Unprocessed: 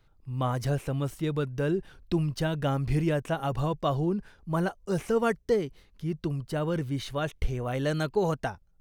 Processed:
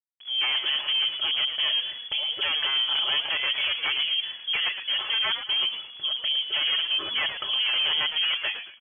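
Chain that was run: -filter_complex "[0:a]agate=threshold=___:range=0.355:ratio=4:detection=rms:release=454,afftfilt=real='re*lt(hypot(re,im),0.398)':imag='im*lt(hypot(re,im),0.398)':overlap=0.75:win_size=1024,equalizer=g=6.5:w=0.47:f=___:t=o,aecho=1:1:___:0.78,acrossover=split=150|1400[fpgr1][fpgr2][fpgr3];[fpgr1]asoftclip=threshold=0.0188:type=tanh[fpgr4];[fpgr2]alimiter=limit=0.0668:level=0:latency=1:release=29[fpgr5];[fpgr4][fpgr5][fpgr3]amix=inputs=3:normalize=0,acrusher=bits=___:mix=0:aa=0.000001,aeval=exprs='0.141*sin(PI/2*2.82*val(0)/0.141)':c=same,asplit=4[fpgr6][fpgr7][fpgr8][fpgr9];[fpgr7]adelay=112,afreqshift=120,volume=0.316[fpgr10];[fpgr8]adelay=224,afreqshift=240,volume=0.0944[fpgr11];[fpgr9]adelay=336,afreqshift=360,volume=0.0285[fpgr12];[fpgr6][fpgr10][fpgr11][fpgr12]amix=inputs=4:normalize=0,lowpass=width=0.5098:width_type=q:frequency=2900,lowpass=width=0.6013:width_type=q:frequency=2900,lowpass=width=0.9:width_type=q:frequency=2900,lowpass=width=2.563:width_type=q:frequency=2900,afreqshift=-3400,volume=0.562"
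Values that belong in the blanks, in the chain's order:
0.00158, 270, 4.3, 8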